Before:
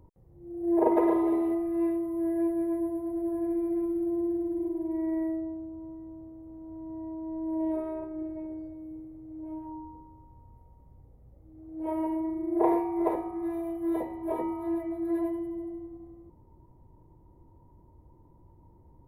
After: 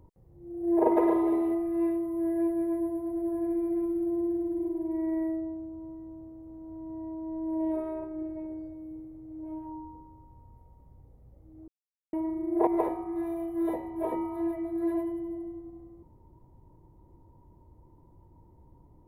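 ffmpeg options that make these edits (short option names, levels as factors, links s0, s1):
-filter_complex "[0:a]asplit=4[s0][s1][s2][s3];[s0]atrim=end=11.68,asetpts=PTS-STARTPTS,afade=t=out:st=11.676:d=0.004:c=hsin[s4];[s1]atrim=start=11.68:end=12.13,asetpts=PTS-STARTPTS,volume=0[s5];[s2]atrim=start=12.13:end=12.672,asetpts=PTS-STARTPTS,afade=t=in:d=0.004:c=hsin[s6];[s3]atrim=start=12.938[s7];[s4][s5][s6]concat=n=3:v=0:a=1[s8];[s8][s7]acrossfade=d=0.004:c1=hsin:c2=hsin"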